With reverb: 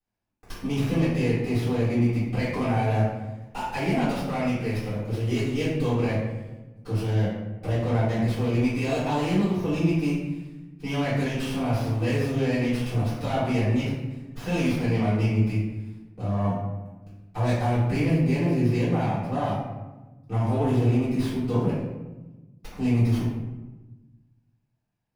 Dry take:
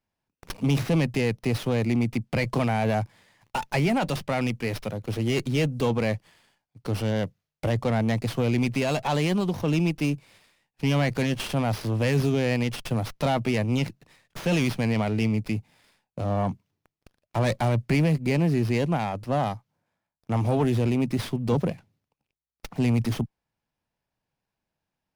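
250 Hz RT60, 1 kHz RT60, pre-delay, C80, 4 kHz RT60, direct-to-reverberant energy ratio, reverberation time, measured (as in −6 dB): 1.7 s, 1.0 s, 3 ms, 3.5 dB, 0.65 s, −14.5 dB, 1.1 s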